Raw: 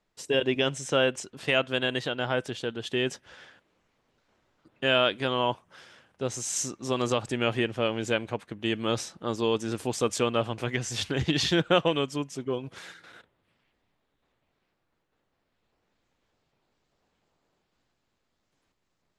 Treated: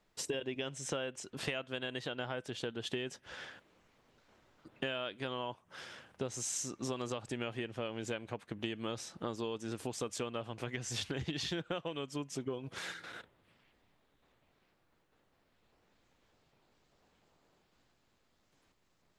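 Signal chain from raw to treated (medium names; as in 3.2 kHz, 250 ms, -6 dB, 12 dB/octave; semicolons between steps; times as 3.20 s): compression 10:1, threshold -38 dBFS, peak gain reduction 21 dB; trim +3 dB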